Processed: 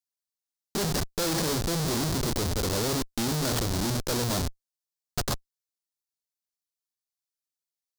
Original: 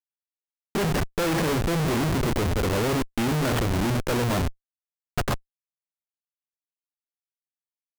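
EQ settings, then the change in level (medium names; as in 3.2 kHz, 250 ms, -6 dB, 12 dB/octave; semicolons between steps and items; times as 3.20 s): resonant high shelf 3.4 kHz +8 dB, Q 1.5; -4.5 dB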